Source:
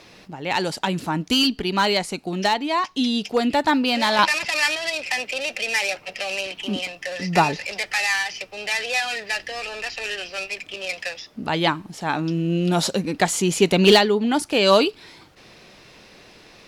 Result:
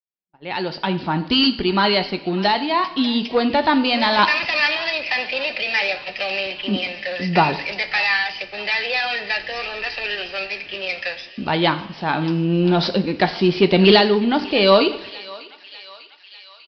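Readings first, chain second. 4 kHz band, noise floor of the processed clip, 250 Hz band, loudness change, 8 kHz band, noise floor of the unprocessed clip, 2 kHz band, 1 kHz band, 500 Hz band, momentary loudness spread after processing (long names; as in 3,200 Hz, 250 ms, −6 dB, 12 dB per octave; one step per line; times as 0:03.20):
+2.5 dB, −46 dBFS, +3.0 dB, +2.5 dB, below −20 dB, −49 dBFS, +2.5 dB, +2.0 dB, +2.5 dB, 11 LU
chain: fade in at the beginning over 1.14 s
noise gate −42 dBFS, range −44 dB
in parallel at −5 dB: hard clipping −18 dBFS, distortion −8 dB
on the sum: downsampling to 11,025 Hz
on a send: feedback echo with a high-pass in the loop 596 ms, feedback 72%, high-pass 1,100 Hz, level −17 dB
on the sum: coupled-rooms reverb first 0.58 s, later 1.8 s, DRR 8.5 dB
level −1 dB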